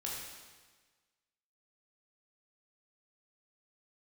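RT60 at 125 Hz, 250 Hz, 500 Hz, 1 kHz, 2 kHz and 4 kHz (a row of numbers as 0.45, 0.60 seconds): 1.4, 1.4, 1.4, 1.4, 1.4, 1.4 seconds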